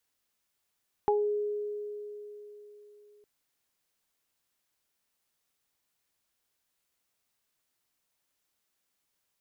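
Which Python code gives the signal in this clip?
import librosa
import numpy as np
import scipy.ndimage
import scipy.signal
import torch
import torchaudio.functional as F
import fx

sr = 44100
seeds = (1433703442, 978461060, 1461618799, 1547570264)

y = fx.additive(sr, length_s=2.16, hz=416.0, level_db=-23.0, upper_db=(2,), decay_s=3.8, upper_decays_s=(0.24,))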